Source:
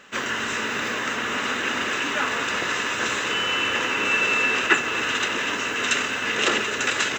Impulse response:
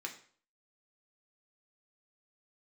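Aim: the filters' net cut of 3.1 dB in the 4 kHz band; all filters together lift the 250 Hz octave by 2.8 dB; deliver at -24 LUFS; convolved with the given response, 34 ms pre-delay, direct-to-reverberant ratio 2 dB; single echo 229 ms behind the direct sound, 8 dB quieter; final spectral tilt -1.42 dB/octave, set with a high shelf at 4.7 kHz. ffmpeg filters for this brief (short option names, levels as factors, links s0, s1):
-filter_complex "[0:a]equalizer=f=250:t=o:g=3.5,equalizer=f=4000:t=o:g=-8,highshelf=f=4700:g=6.5,aecho=1:1:229:0.398,asplit=2[s0][s1];[1:a]atrim=start_sample=2205,adelay=34[s2];[s1][s2]afir=irnorm=-1:irlink=0,volume=0.794[s3];[s0][s3]amix=inputs=2:normalize=0,volume=0.708"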